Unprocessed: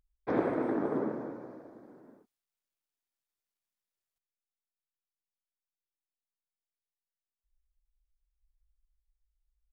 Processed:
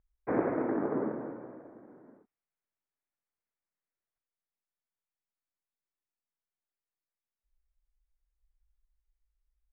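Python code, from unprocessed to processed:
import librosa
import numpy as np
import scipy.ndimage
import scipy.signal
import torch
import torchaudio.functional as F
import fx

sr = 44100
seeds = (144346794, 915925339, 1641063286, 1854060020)

y = scipy.signal.sosfilt(scipy.signal.butter(6, 2300.0, 'lowpass', fs=sr, output='sos'), x)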